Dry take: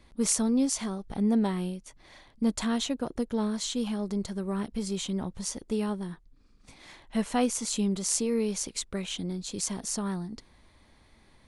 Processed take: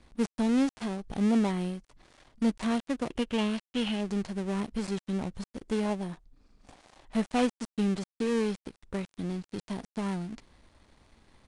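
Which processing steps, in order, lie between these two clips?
dead-time distortion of 0.28 ms; 5.85–7.01 s: peaking EQ 680 Hz +6.5 dB 0.73 oct; resampled via 22.05 kHz; 3.10–4.01 s: peaking EQ 2.9 kHz +12.5 dB 0.57 oct

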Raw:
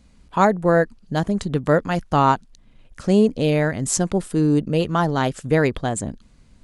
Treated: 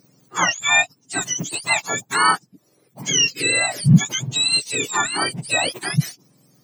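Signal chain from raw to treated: spectrum inverted on a logarithmic axis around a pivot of 1.1 kHz; trim +2 dB

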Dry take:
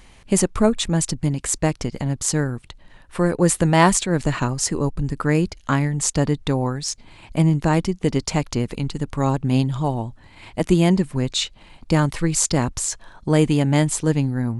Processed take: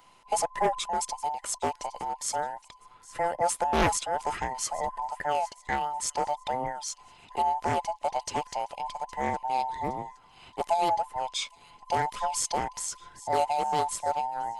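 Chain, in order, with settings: every band turned upside down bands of 1 kHz; band-stop 960 Hz, Q 11; on a send: feedback echo behind a high-pass 815 ms, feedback 42%, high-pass 2.3 kHz, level -18.5 dB; on the sum: loudspeaker Doppler distortion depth 0.4 ms; trim -9 dB

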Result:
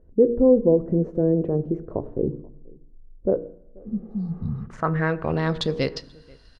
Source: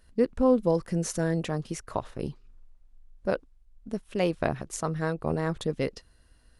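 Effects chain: spectral replace 3.83–4.64 s, 250–3700 Hz after; de-hum 59.27 Hz, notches 8; in parallel at +2.5 dB: peak limiter -22.5 dBFS, peak gain reduction 11 dB; on the sum: low-pass sweep 430 Hz -> 4.6 kHz, 3.81–5.64 s; echo from a far wall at 83 m, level -26 dB; on a send at -14.5 dB: reverberation RT60 0.80 s, pre-delay 5 ms; on the sum: trim -1 dB

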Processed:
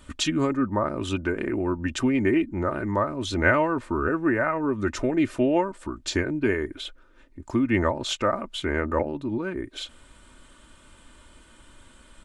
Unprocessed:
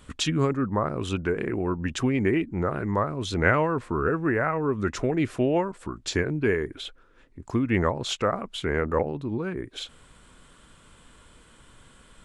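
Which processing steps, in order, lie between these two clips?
comb 3.3 ms, depth 53%

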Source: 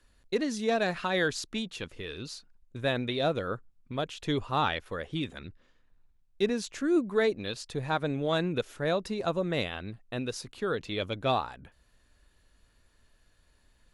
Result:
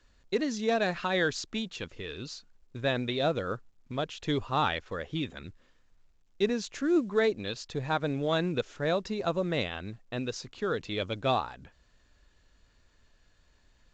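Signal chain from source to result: µ-law 128 kbps 16 kHz

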